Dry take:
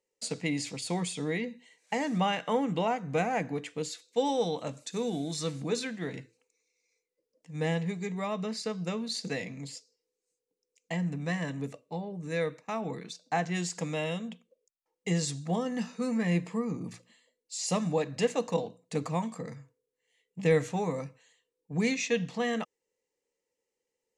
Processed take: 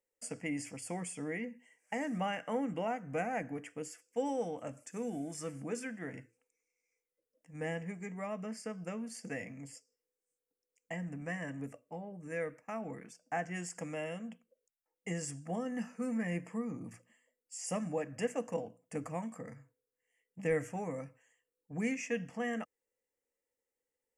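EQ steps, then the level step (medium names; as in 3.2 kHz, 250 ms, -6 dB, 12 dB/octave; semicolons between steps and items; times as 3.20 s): Butterworth band-stop 3.9 kHz, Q 1.4; dynamic bell 970 Hz, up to -3 dB, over -40 dBFS, Q 1.3; fifteen-band graphic EQ 160 Hz -11 dB, 400 Hz -9 dB, 1 kHz -7 dB, 2.5 kHz -6 dB, 6.3 kHz -9 dB; 0.0 dB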